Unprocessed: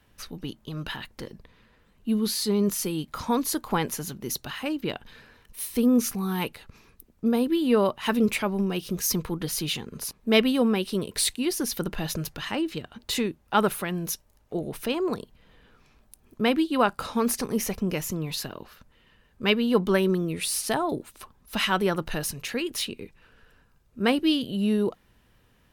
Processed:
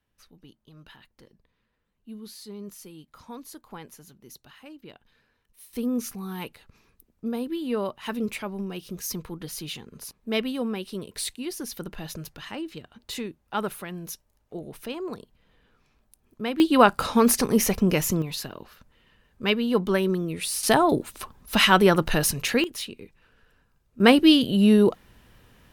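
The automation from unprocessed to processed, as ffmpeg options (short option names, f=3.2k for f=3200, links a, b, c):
-af "asetnsamples=n=441:p=0,asendcmd='5.73 volume volume -6.5dB;16.6 volume volume 6dB;18.22 volume volume -1dB;20.63 volume volume 7dB;22.64 volume volume -4dB;24 volume volume 7dB',volume=-16dB"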